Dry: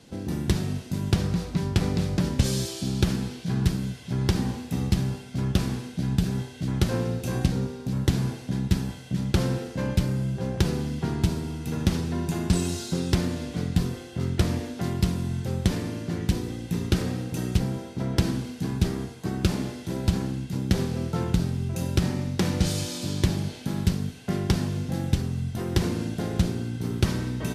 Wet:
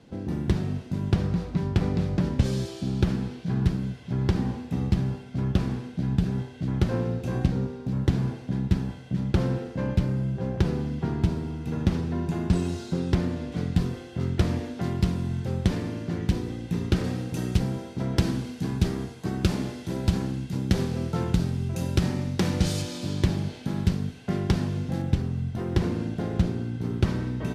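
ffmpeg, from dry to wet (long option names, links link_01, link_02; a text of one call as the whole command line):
ffmpeg -i in.wav -af "asetnsamples=nb_out_samples=441:pad=0,asendcmd='13.52 lowpass f 3400;17.04 lowpass f 7400;22.82 lowpass f 3500;25.02 lowpass f 2000',lowpass=frequency=1800:poles=1" out.wav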